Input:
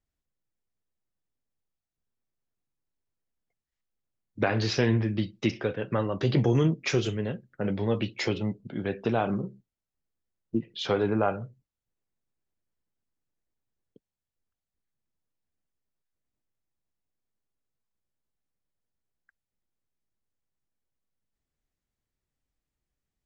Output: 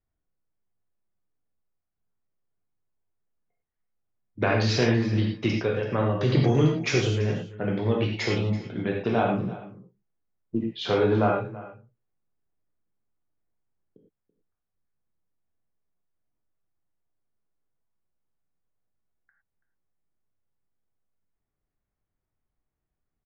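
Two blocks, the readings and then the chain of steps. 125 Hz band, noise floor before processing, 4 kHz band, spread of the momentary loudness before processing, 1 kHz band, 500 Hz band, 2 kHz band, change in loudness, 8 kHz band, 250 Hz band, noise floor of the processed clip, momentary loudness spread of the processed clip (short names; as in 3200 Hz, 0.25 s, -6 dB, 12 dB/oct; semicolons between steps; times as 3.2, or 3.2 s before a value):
+3.5 dB, under -85 dBFS, +3.0 dB, 9 LU, +3.5 dB, +3.0 dB, +3.5 dB, +3.0 dB, n/a, +2.5 dB, -84 dBFS, 9 LU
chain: low-pass opened by the level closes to 1600 Hz, open at -24.5 dBFS; on a send: echo 0.333 s -17.5 dB; on the sum: non-linear reverb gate 0.13 s flat, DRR -1 dB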